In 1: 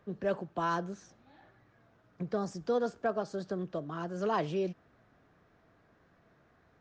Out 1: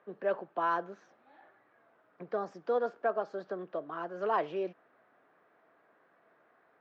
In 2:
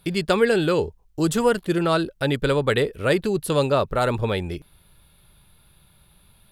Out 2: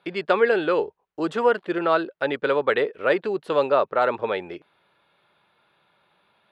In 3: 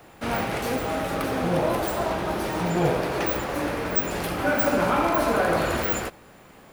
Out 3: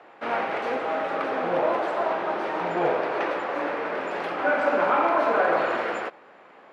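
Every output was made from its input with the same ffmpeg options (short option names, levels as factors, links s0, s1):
-af "highpass=440,lowpass=2200,volume=1.33"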